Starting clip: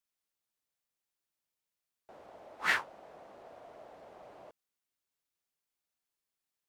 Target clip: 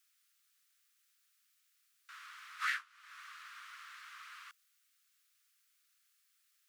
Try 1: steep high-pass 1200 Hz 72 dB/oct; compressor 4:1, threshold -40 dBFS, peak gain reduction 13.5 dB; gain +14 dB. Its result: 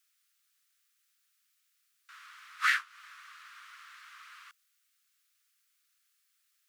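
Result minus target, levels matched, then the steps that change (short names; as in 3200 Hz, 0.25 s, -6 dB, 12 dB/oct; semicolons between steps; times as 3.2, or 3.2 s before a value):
compressor: peak gain reduction -8.5 dB
change: compressor 4:1, threshold -51.5 dBFS, peak gain reduction 22 dB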